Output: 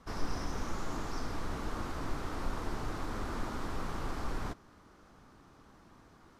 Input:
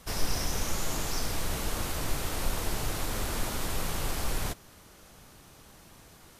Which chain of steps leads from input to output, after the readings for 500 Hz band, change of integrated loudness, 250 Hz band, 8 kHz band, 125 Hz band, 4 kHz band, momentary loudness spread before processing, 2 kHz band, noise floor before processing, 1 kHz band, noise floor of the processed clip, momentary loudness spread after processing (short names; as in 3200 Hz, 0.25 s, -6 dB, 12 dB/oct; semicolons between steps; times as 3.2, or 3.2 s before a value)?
-4.5 dB, -6.5 dB, -1.5 dB, -17.0 dB, -5.5 dB, -12.5 dB, 21 LU, -6.5 dB, -54 dBFS, -2.5 dB, -60 dBFS, 20 LU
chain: EQ curve 160 Hz 0 dB, 270 Hz +6 dB, 570 Hz -1 dB, 1200 Hz +5 dB, 2700 Hz -7 dB, 5300 Hz -7 dB, 12000 Hz -19 dB; gain -5.5 dB